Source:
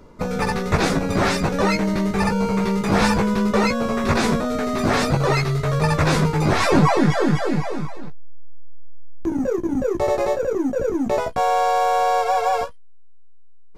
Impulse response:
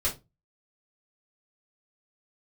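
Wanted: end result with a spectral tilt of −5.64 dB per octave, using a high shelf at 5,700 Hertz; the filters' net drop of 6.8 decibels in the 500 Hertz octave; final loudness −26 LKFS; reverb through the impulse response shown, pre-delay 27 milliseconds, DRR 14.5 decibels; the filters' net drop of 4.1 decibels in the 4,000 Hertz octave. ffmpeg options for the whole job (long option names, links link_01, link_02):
-filter_complex "[0:a]equalizer=frequency=500:width_type=o:gain=-8.5,equalizer=frequency=4000:width_type=o:gain=-6.5,highshelf=frequency=5700:gain=3.5,asplit=2[link_01][link_02];[1:a]atrim=start_sample=2205,adelay=27[link_03];[link_02][link_03]afir=irnorm=-1:irlink=0,volume=-22dB[link_04];[link_01][link_04]amix=inputs=2:normalize=0,volume=-3.5dB"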